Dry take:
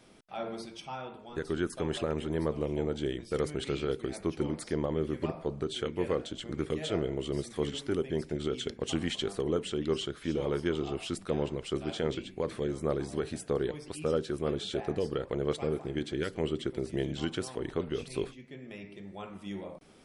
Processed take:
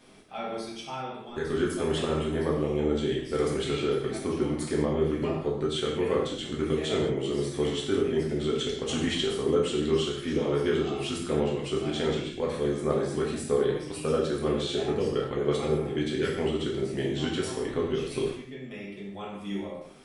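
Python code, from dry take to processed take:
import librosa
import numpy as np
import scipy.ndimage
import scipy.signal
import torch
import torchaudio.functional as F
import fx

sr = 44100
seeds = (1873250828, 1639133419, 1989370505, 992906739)

y = fx.rev_gated(x, sr, seeds[0], gate_ms=240, shape='falling', drr_db=-4.0)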